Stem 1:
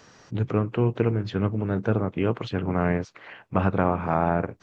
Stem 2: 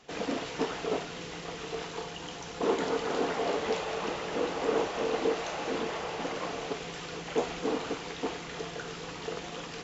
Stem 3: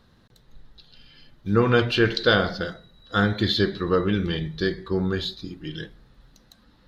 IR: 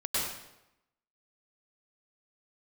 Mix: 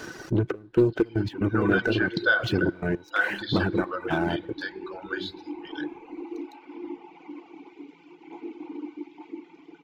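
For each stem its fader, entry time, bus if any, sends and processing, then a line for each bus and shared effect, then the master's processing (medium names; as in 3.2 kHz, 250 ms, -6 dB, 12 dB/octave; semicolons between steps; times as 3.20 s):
0.0 dB, 0.00 s, no bus, no send, compression 10:1, threshold -30 dBFS, peak gain reduction 14 dB; waveshaping leveller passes 3; trance gate "xxxx..xx.x.xx" 117 bpm -12 dB
-2.0 dB, 0.95 s, bus A, send -7 dB, vowel filter u
-1.5 dB, 0.00 s, bus A, send -24 dB, treble shelf 4 kHz -9.5 dB
bus A: 0.0 dB, brick-wall FIR high-pass 490 Hz; compression 1.5:1, threshold -36 dBFS, peak gain reduction 6.5 dB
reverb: on, RT60 0.90 s, pre-delay 94 ms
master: reverb removal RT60 1.4 s; small resonant body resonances 340/1500 Hz, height 15 dB, ringing for 50 ms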